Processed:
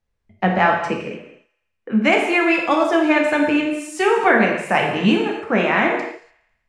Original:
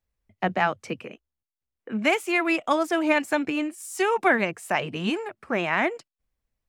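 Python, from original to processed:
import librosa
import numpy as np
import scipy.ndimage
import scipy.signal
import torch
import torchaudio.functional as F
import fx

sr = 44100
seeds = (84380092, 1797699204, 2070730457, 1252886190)

p1 = scipy.signal.sosfilt(scipy.signal.butter(2, 8900.0, 'lowpass', fs=sr, output='sos'), x)
p2 = fx.high_shelf(p1, sr, hz=4300.0, db=-7.0)
p3 = fx.echo_thinned(p2, sr, ms=83, feedback_pct=60, hz=500.0, wet_db=-20)
p4 = fx.rider(p3, sr, range_db=10, speed_s=0.5)
p5 = p3 + (p4 * librosa.db_to_amplitude(1.0))
p6 = fx.rev_gated(p5, sr, seeds[0], gate_ms=320, shape='falling', drr_db=0.0)
y = p6 * librosa.db_to_amplitude(-1.5)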